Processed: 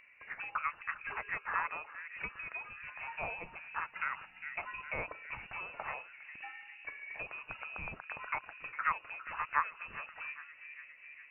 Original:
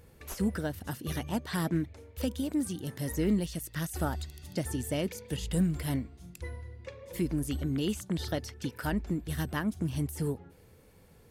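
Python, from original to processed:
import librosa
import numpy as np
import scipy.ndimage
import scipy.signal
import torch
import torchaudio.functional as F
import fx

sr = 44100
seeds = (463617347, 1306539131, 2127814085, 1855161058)

y = fx.echo_bbd(x, sr, ms=406, stages=4096, feedback_pct=67, wet_db=-14.5)
y = fx.auto_wah(y, sr, base_hz=740.0, top_hz=2100.0, q=2.4, full_db=-25.0, direction='up')
y = fx.freq_invert(y, sr, carrier_hz=2800)
y = y * 10.0 ** (9.0 / 20.0)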